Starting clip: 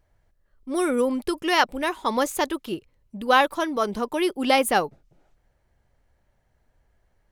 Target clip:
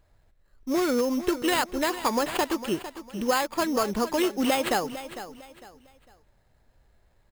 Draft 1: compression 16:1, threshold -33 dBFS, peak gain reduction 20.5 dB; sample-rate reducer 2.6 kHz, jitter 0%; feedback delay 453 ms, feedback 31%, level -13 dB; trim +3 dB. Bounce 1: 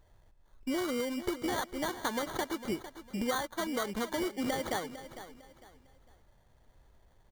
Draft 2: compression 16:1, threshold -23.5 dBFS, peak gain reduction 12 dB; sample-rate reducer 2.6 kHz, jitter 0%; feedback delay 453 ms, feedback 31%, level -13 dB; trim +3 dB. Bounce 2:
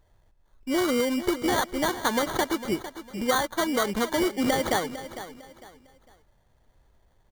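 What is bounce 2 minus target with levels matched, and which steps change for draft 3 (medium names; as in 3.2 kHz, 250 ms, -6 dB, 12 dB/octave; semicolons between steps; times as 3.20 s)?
sample-rate reducer: distortion +6 dB
change: sample-rate reducer 5.8 kHz, jitter 0%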